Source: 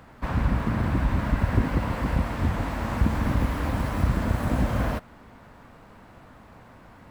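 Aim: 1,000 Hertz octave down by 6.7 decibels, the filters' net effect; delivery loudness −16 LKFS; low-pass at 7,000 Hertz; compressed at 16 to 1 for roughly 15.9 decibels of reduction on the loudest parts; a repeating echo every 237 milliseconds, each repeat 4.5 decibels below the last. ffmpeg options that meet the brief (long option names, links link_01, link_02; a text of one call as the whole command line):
ffmpeg -i in.wav -af "lowpass=7000,equalizer=frequency=1000:width_type=o:gain=-8.5,acompressor=threshold=-33dB:ratio=16,aecho=1:1:237|474|711|948|1185|1422|1659|1896|2133:0.596|0.357|0.214|0.129|0.0772|0.0463|0.0278|0.0167|0.01,volume=22dB" out.wav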